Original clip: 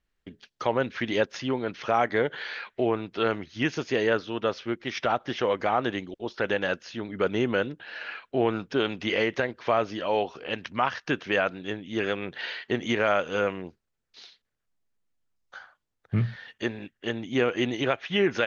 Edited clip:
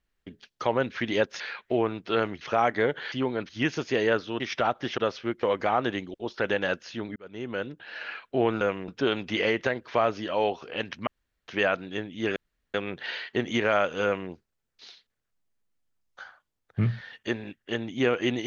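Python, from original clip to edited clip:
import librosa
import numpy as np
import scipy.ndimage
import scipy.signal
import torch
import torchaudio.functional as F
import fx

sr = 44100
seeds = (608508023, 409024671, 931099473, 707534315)

y = fx.edit(x, sr, fx.swap(start_s=1.4, length_s=0.37, other_s=2.48, other_length_s=1.01),
    fx.move(start_s=4.4, length_s=0.45, to_s=5.43),
    fx.fade_in_span(start_s=7.16, length_s=0.84),
    fx.room_tone_fill(start_s=10.8, length_s=0.41),
    fx.insert_room_tone(at_s=12.09, length_s=0.38),
    fx.duplicate(start_s=13.39, length_s=0.27, to_s=8.61), tone=tone)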